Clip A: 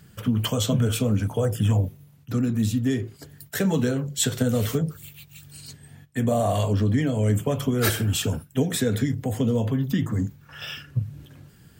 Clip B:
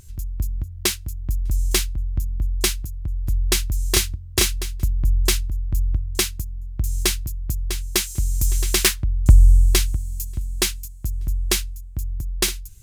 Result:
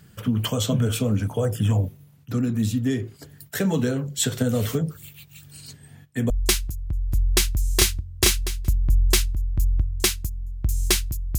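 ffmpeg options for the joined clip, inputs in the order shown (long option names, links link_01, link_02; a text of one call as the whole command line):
ffmpeg -i cue0.wav -i cue1.wav -filter_complex "[0:a]apad=whole_dur=11.38,atrim=end=11.38,atrim=end=6.302[link_01];[1:a]atrim=start=2.448:end=7.53[link_02];[link_01][link_02]acrossfade=duration=0.004:curve1=hsin:curve2=hsin" out.wav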